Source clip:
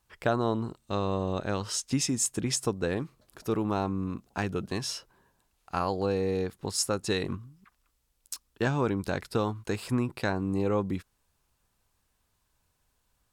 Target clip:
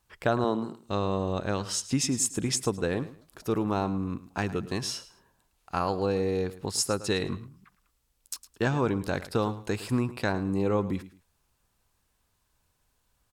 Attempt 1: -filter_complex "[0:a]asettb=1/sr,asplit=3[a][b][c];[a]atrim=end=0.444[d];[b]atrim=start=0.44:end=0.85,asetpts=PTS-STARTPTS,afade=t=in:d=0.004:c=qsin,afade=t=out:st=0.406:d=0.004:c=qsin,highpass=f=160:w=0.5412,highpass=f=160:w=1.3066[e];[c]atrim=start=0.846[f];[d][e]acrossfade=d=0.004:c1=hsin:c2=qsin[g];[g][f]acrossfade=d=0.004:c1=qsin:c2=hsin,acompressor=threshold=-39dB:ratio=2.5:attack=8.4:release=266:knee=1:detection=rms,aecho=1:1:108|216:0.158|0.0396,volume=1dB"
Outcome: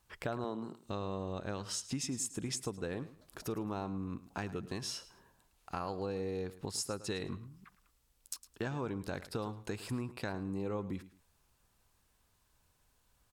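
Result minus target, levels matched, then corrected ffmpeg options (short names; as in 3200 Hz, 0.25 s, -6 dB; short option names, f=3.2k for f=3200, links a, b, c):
compressor: peak gain reduction +13 dB
-filter_complex "[0:a]asettb=1/sr,asplit=3[a][b][c];[a]atrim=end=0.444[d];[b]atrim=start=0.44:end=0.85,asetpts=PTS-STARTPTS,afade=t=in:d=0.004:c=qsin,afade=t=out:st=0.406:d=0.004:c=qsin,highpass=f=160:w=0.5412,highpass=f=160:w=1.3066[e];[c]atrim=start=0.846[f];[d][e]acrossfade=d=0.004:c1=hsin:c2=qsin[g];[g][f]acrossfade=d=0.004:c1=qsin:c2=hsin,aecho=1:1:108|216:0.158|0.0396,volume=1dB"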